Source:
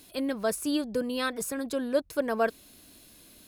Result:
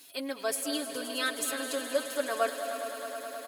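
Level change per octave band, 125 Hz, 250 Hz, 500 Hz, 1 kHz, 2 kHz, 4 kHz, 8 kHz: under -15 dB, -7.5 dB, -2.5 dB, 0.0 dB, +1.0 dB, +3.5 dB, +3.5 dB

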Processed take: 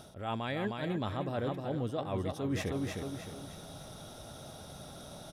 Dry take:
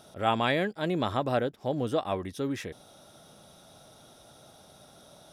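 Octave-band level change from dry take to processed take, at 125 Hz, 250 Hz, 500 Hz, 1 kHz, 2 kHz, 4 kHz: -0.5, -3.5, -6.5, -8.5, -7.5, -6.5 dB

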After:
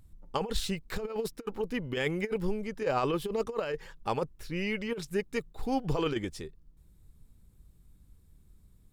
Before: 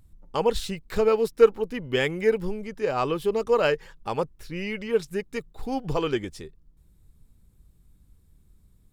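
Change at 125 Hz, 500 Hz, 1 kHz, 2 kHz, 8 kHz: -2.0, -9.5, -5.0, -5.5, -2.0 dB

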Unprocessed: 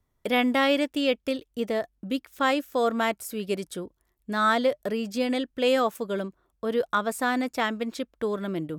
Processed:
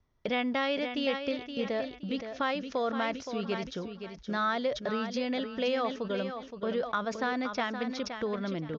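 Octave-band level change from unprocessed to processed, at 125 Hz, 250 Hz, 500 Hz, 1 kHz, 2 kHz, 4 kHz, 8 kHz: -2.0, -5.0, -5.5, -5.5, -5.5, -5.0, -9.5 dB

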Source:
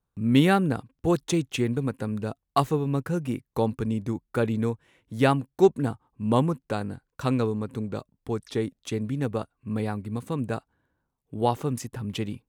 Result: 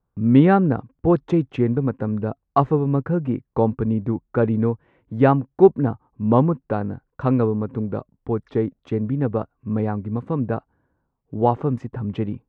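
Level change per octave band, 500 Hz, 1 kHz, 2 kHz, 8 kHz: +6.0 dB, +5.0 dB, -0.5 dB, under -20 dB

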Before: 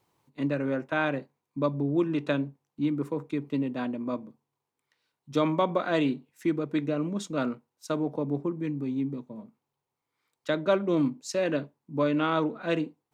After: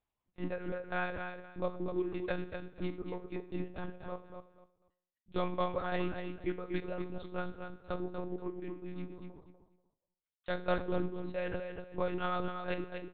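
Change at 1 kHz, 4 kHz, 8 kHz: -6.5 dB, -9.5 dB, under -30 dB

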